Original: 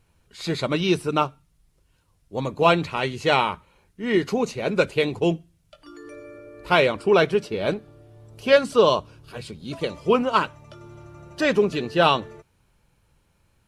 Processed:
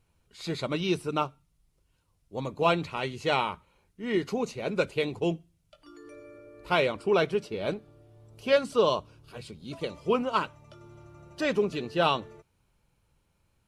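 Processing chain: bell 1700 Hz -4 dB 0.23 oct; gain -6.5 dB

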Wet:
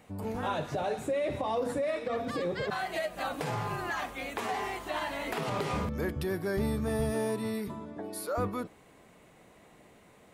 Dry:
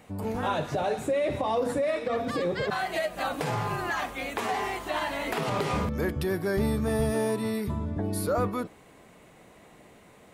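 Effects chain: 7.67–8.36 HPF 200 Hz -> 540 Hz 12 dB/oct; gain -4 dB

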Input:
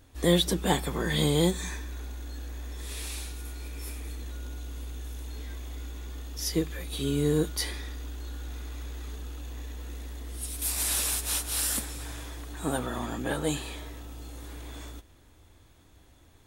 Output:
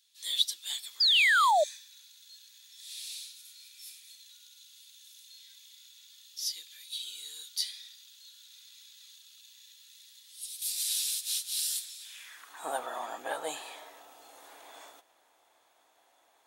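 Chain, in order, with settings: high-pass sweep 3900 Hz -> 720 Hz, 12.01–12.67; painted sound fall, 1–1.64, 570–5100 Hz -18 dBFS; gain -5 dB

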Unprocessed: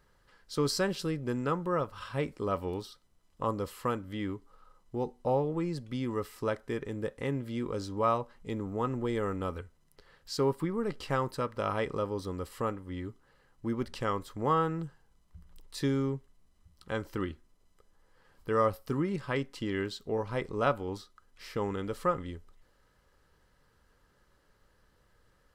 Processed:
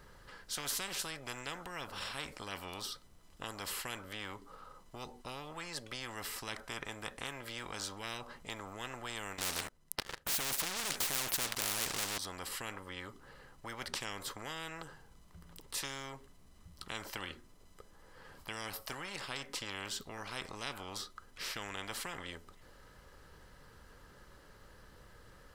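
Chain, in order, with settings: 9.38–12.18 sample leveller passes 5; spectral compressor 10:1; gain +1.5 dB

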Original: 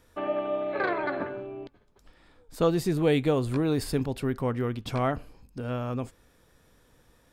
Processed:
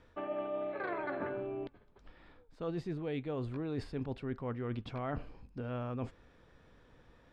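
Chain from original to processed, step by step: LPF 3200 Hz 12 dB/oct; reverse; compressor 12:1, threshold -34 dBFS, peak gain reduction 16.5 dB; reverse

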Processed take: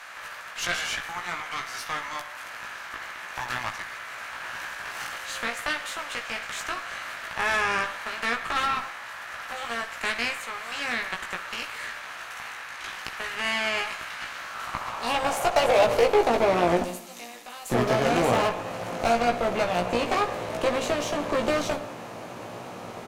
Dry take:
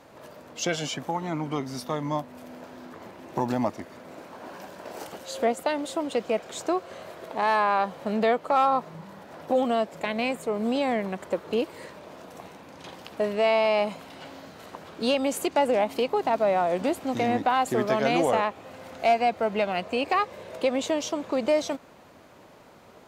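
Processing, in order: per-bin compression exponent 0.6; 16.83–17.7 differentiator; on a send at -12 dB: reverb RT60 0.75 s, pre-delay 78 ms; on the sum: high-pass sweep 1600 Hz -> 100 Hz, 14.35–18.02; added harmonics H 4 -13 dB, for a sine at -9 dBFS; early reflections 17 ms -3.5 dB, 64 ms -15 dB; gain -6 dB

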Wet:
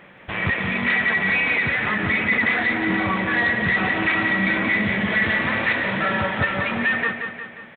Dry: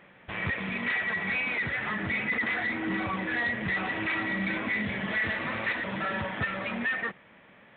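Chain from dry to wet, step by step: feedback echo 0.178 s, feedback 53%, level -7 dB; gain +8 dB

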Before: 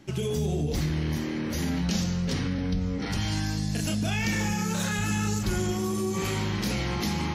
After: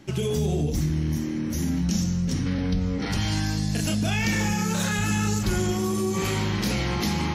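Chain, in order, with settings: spectral gain 0.7–2.47, 350–5200 Hz -8 dB; gain +3 dB

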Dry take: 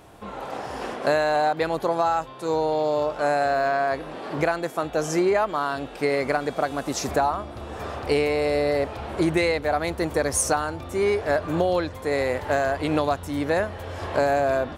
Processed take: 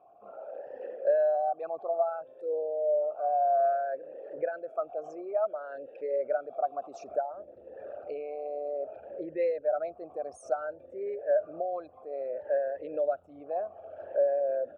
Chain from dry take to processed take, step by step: formant sharpening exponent 2; vowel sweep a-e 0.59 Hz; gain -1 dB

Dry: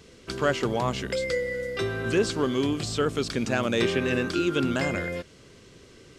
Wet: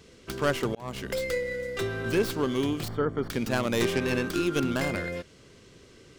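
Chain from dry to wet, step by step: tracing distortion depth 0.14 ms; 0.75–1.23 fade in equal-power; 2.88–3.3 polynomial smoothing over 41 samples; gain -2 dB

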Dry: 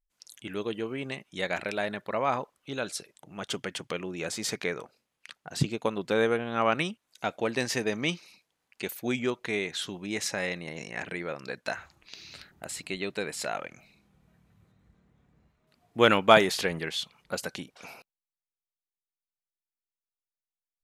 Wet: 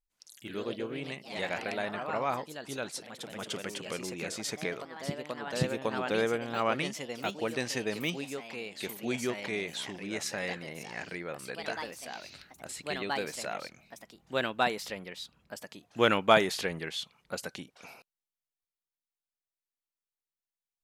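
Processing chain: echoes that change speed 85 ms, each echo +2 st, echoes 3, each echo -6 dB; gain -4 dB

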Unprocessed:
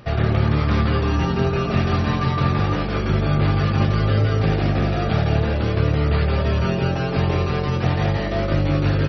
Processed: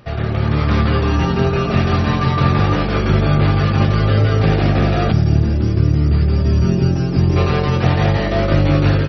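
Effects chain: spectral gain 5.12–7.37, 400–4600 Hz -12 dB; AGC; gain -1.5 dB

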